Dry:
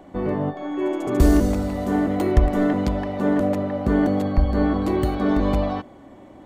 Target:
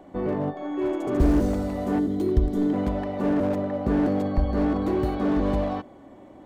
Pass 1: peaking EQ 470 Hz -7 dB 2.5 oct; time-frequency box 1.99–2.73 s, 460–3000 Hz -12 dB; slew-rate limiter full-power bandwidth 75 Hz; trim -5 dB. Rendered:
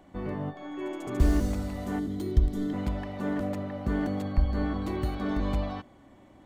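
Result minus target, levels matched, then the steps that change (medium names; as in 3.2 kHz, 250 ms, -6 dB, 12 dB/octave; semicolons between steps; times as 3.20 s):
500 Hz band -3.5 dB
change: peaking EQ 470 Hz +3.5 dB 2.5 oct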